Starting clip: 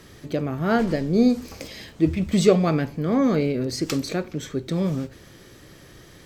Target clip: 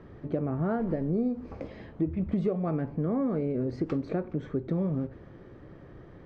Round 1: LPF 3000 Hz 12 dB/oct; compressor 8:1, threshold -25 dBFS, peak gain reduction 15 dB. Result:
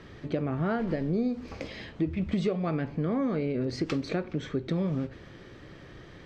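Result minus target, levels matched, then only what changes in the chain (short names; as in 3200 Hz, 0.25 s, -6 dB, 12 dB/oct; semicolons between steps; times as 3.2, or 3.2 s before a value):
4000 Hz band +16.0 dB
change: LPF 1100 Hz 12 dB/oct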